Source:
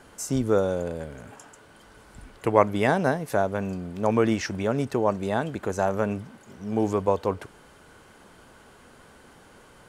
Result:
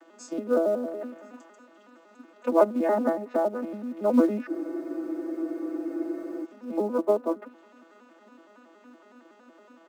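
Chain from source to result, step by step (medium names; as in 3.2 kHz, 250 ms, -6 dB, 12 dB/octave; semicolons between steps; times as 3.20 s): vocoder on a broken chord major triad, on E3, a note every 93 ms; elliptic high-pass 250 Hz, stop band 50 dB; comb 3.3 ms, depth 68%; on a send: feedback echo behind a high-pass 344 ms, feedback 63%, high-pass 2.7 kHz, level -17.5 dB; on the sum: low-pass that closes with the level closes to 1.4 kHz, closed at -27 dBFS; in parallel at -12 dB: short-mantissa float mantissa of 2-bit; on the sum: spectral freeze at 4.50 s, 1.94 s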